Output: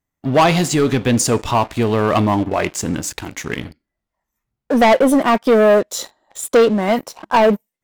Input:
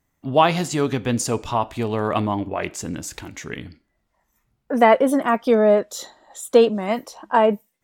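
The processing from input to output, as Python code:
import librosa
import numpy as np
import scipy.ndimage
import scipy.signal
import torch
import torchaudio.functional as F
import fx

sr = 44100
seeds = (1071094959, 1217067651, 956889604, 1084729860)

y = fx.leveller(x, sr, passes=3)
y = F.gain(torch.from_numpy(y), -3.5).numpy()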